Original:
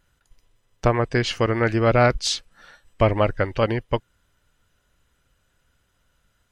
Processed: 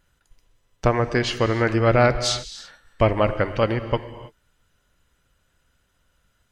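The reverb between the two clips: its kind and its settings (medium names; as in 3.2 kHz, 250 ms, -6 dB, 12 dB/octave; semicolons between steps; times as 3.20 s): gated-style reverb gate 350 ms flat, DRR 11 dB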